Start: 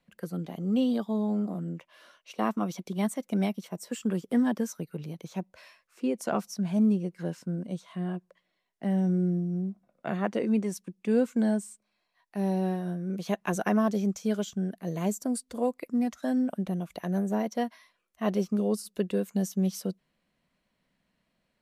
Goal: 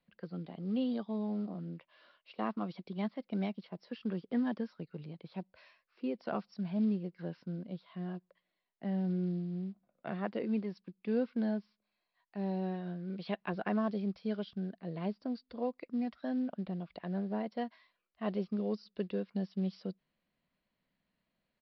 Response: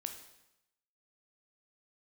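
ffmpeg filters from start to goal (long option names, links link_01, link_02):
-filter_complex "[0:a]asettb=1/sr,asplit=3[link_01][link_02][link_03];[link_01]atrim=end=12.744[link_04];[link_02]atrim=start=12.74:end=13.43,asetpts=PTS-STARTPTS,afade=type=in:duration=0.004:curve=qsin,afade=type=out:start_time=0.686:duration=0.004:curve=qsin,equalizer=frequency=2900:width_type=o:width=1.6:gain=4.5[link_05];[link_03]atrim=start=13.426[link_06];[link_04][link_05]acrossfade=duration=0.004:curve1=hsin:curve2=qsin[link_07];[link_07][link_06]acrossfade=duration=0.004:curve1=qsin:curve2=hsin,acrusher=bits=8:mode=log:mix=0:aa=0.000001,aresample=11025,aresample=44100,volume=-7.5dB"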